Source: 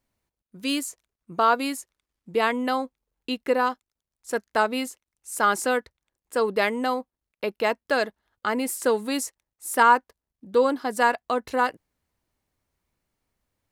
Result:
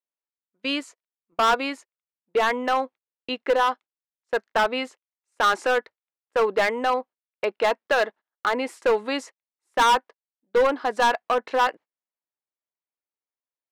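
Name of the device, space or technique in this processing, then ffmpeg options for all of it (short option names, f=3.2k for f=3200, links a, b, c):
walkie-talkie: -af "highpass=430,lowpass=2.9k,asoftclip=type=hard:threshold=-20.5dB,agate=range=-24dB:threshold=-46dB:ratio=16:detection=peak,volume=5.5dB"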